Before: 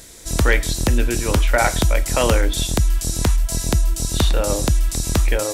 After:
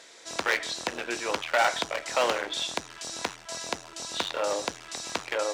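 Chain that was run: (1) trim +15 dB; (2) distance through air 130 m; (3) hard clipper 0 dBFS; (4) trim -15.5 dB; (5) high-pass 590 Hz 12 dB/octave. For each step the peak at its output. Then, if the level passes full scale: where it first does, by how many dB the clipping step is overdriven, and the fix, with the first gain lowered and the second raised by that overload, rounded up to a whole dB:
+10.0 dBFS, +9.5 dBFS, 0.0 dBFS, -15.5 dBFS, -11.0 dBFS; step 1, 9.5 dB; step 1 +5 dB, step 4 -5.5 dB

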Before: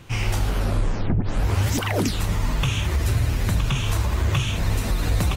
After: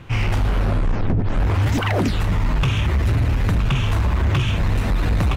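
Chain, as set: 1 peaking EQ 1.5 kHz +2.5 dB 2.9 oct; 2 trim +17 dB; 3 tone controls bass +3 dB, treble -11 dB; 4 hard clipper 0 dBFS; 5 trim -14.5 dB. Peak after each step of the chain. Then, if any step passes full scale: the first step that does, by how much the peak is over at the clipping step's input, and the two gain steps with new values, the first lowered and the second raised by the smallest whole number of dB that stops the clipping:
-11.0 dBFS, +6.0 dBFS, +7.5 dBFS, 0.0 dBFS, -14.5 dBFS; step 2, 7.5 dB; step 2 +9 dB, step 5 -6.5 dB

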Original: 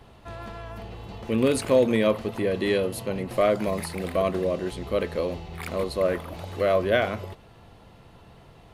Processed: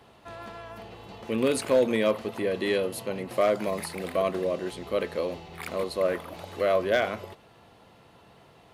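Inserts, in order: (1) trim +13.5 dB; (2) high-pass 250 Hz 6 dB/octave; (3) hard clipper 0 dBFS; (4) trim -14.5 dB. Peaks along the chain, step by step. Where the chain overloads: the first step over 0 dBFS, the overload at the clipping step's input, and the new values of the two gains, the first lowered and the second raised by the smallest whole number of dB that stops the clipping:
+4.5 dBFS, +5.0 dBFS, 0.0 dBFS, -14.5 dBFS; step 1, 5.0 dB; step 1 +8.5 dB, step 4 -9.5 dB

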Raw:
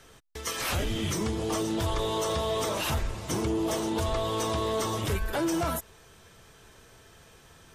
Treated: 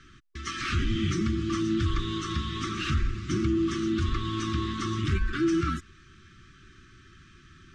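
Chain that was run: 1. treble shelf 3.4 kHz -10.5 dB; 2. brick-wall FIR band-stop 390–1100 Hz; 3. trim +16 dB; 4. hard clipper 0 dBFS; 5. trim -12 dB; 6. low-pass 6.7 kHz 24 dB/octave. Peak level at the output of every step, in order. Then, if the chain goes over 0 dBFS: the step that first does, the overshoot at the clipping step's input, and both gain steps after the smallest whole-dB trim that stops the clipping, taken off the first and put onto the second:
-22.0 dBFS, -20.0 dBFS, -4.0 dBFS, -4.0 dBFS, -16.0 dBFS, -16.0 dBFS; nothing clips

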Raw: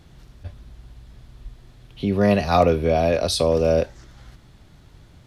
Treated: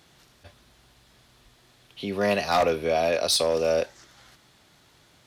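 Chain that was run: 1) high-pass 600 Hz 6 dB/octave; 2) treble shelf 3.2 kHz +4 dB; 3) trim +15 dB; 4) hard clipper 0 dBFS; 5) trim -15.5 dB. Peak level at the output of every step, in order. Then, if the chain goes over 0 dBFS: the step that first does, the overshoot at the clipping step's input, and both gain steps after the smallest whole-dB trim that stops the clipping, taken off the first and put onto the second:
-6.0 dBFS, -6.0 dBFS, +9.0 dBFS, 0.0 dBFS, -15.5 dBFS; step 3, 9.0 dB; step 3 +6 dB, step 5 -6.5 dB

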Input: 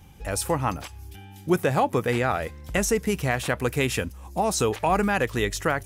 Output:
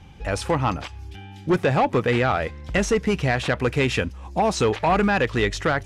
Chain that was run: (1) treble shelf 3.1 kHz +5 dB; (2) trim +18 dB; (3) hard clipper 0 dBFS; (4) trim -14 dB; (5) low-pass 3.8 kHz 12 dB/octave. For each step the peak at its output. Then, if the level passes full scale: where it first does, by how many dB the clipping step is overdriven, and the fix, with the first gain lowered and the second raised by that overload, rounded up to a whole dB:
-9.5 dBFS, +8.5 dBFS, 0.0 dBFS, -14.0 dBFS, -13.0 dBFS; step 2, 8.5 dB; step 2 +9 dB, step 4 -5 dB

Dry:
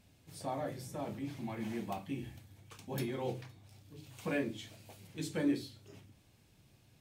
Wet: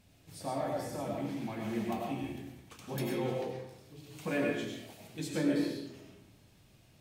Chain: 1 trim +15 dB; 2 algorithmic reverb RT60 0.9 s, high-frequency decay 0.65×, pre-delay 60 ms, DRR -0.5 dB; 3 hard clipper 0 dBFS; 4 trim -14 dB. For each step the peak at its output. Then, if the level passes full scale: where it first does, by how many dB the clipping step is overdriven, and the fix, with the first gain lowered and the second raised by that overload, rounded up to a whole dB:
-7.5 dBFS, -4.5 dBFS, -4.5 dBFS, -18.5 dBFS; nothing clips

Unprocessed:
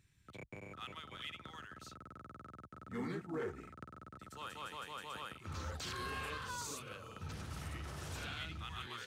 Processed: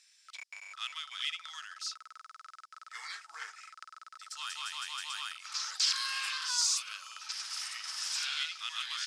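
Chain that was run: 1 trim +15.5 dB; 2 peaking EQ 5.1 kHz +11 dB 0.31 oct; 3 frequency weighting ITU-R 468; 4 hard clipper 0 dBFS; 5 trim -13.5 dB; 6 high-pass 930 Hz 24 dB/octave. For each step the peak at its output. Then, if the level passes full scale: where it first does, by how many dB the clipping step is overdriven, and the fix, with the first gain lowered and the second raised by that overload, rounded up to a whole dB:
-16.0 dBFS, -13.5 dBFS, -3.5 dBFS, -3.5 dBFS, -17.0 dBFS, -16.5 dBFS; nothing clips

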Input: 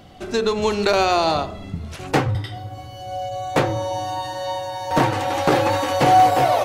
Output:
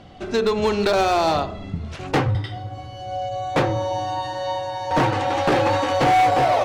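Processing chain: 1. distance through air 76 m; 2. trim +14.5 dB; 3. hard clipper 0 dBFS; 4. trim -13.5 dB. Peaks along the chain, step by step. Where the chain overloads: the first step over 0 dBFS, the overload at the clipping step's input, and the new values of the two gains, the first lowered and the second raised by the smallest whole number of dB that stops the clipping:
-7.0 dBFS, +7.5 dBFS, 0.0 dBFS, -13.5 dBFS; step 2, 7.5 dB; step 2 +6.5 dB, step 4 -5.5 dB

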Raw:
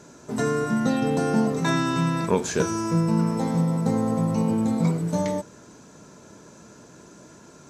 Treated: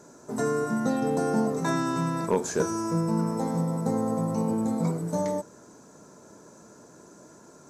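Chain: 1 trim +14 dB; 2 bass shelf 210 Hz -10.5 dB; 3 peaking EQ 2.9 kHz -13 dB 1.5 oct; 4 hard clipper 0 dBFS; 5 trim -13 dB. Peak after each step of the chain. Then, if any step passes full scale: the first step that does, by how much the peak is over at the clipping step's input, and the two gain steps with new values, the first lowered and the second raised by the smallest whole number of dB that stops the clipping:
+7.0 dBFS, +4.5 dBFS, +4.0 dBFS, 0.0 dBFS, -13.0 dBFS; step 1, 4.0 dB; step 1 +10 dB, step 5 -9 dB

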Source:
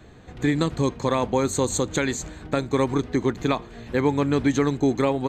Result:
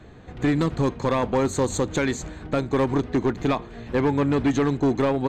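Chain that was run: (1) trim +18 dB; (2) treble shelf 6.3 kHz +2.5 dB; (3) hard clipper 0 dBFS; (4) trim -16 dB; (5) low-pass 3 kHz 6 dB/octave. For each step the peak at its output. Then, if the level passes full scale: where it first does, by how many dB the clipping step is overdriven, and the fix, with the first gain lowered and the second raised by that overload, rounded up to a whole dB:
+8.5 dBFS, +8.5 dBFS, 0.0 dBFS, -16.0 dBFS, -16.0 dBFS; step 1, 8.5 dB; step 1 +9 dB, step 4 -7 dB

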